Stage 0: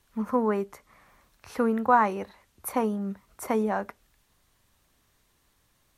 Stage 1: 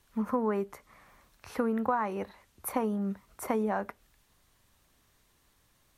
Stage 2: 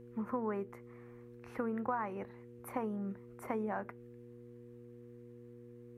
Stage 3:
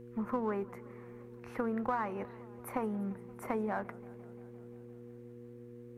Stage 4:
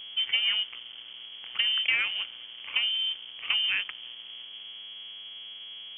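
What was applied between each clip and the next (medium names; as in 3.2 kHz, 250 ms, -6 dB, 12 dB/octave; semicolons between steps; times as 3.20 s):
dynamic bell 6.2 kHz, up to -4 dB, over -54 dBFS, Q 0.73; compression 6:1, threshold -25 dBFS, peak gain reduction 10.5 dB
resonant high shelf 2.9 kHz -8 dB, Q 1.5; mains buzz 120 Hz, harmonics 4, -46 dBFS 0 dB/octave; trim -7.5 dB
in parallel at -7 dB: one-sided clip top -41 dBFS; on the sum: modulated delay 173 ms, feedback 75%, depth 178 cents, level -22 dB
hysteresis with a dead band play -42 dBFS; mains buzz 100 Hz, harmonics 34, -68 dBFS -2 dB/octave; frequency inversion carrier 3.3 kHz; trim +7.5 dB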